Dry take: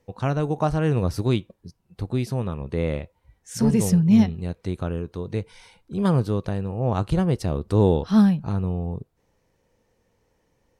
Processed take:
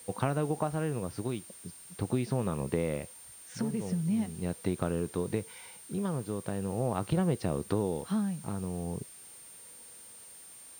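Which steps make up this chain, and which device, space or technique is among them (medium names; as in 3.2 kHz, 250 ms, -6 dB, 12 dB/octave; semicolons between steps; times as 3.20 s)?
medium wave at night (band-pass 140–3600 Hz; compression, threshold -28 dBFS, peak gain reduction 14.5 dB; tremolo 0.41 Hz, depth 46%; whistle 9 kHz -52 dBFS; white noise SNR 23 dB); trim +3 dB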